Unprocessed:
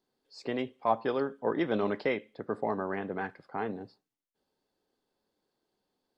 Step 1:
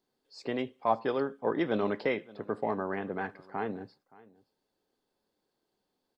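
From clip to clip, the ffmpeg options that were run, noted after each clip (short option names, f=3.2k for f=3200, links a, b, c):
-af "aecho=1:1:572:0.075"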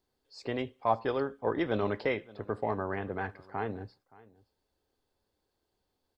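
-af "lowshelf=f=120:t=q:w=1.5:g=11"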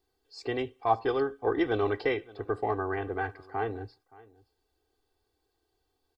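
-af "aecho=1:1:2.6:0.8"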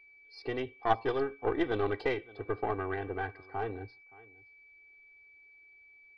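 -af "aeval=exprs='val(0)+0.00251*sin(2*PI*2300*n/s)':c=same,aresample=11025,aresample=44100,aeval=exprs='0.251*(cos(1*acos(clip(val(0)/0.251,-1,1)))-cos(1*PI/2))+0.0178*(cos(3*acos(clip(val(0)/0.251,-1,1)))-cos(3*PI/2))+0.0316*(cos(4*acos(clip(val(0)/0.251,-1,1)))-cos(4*PI/2))':c=same,volume=-1.5dB"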